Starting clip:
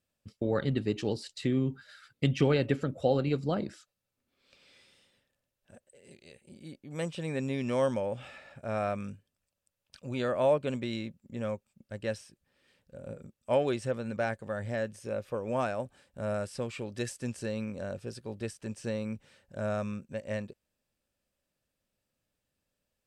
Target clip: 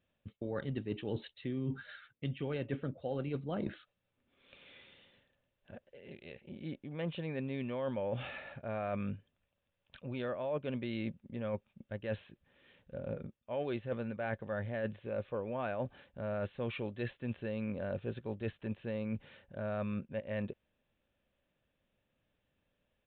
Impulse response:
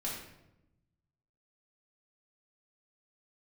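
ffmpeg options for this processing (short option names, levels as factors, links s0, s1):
-af "bandreject=f=1300:w=25,areverse,acompressor=threshold=0.0126:ratio=12,areverse,aresample=8000,aresample=44100,volume=1.68"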